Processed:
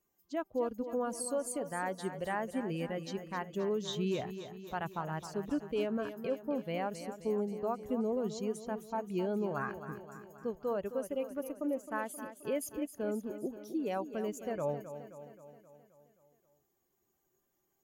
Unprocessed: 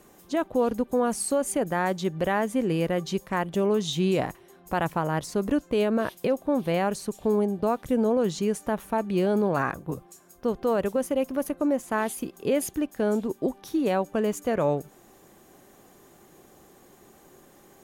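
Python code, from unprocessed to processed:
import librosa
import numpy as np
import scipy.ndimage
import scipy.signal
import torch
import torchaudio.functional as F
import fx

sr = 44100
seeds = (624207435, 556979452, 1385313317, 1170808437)

y = fx.bin_expand(x, sr, power=1.5)
y = fx.low_shelf(y, sr, hz=93.0, db=-5.5)
y = fx.echo_feedback(y, sr, ms=264, feedback_pct=58, wet_db=-11)
y = F.gain(torch.from_numpy(y), -7.5).numpy()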